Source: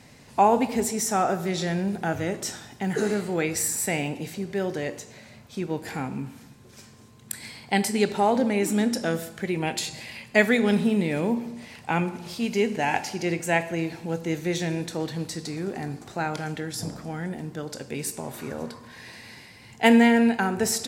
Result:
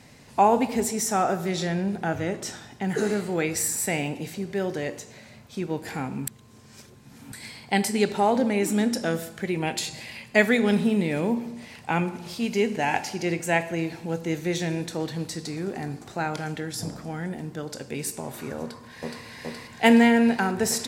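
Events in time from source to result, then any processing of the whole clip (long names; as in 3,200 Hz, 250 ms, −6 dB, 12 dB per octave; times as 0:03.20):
0:01.67–0:02.89: high-shelf EQ 7,200 Hz −7 dB
0:06.27–0:07.32: reverse
0:18.60–0:19.25: delay throw 420 ms, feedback 85%, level 0 dB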